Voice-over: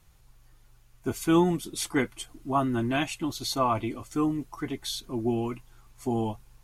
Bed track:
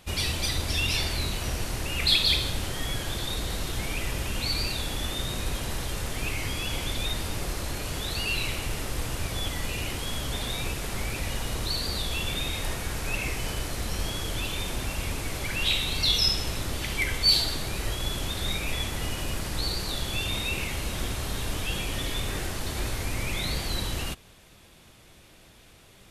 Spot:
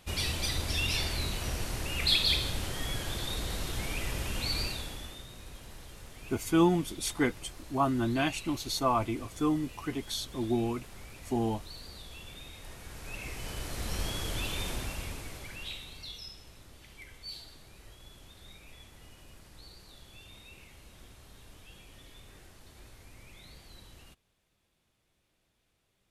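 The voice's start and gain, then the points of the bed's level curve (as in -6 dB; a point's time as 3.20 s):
5.25 s, -2.0 dB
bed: 4.62 s -4 dB
5.28 s -17 dB
12.60 s -17 dB
13.94 s -3.5 dB
14.69 s -3.5 dB
16.27 s -22.5 dB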